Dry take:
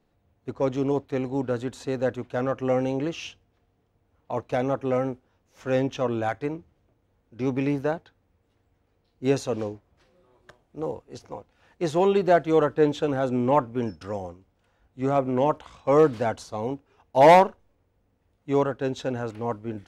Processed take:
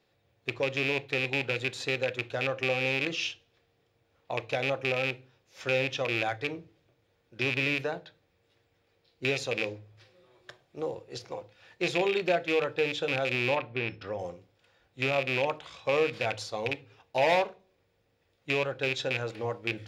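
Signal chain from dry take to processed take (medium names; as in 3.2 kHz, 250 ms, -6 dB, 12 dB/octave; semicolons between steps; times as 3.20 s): rattle on loud lows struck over -29 dBFS, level -19 dBFS; ten-band graphic EQ 125 Hz +5 dB, 250 Hz -8 dB, 500 Hz +5 dB, 1 kHz -4 dB, 4 kHz +8 dB; compression 2:1, threshold -31 dBFS, peak gain reduction 12 dB; 13.56–14.19 s: distance through air 230 m; reverberation RT60 0.40 s, pre-delay 3 ms, DRR 12 dB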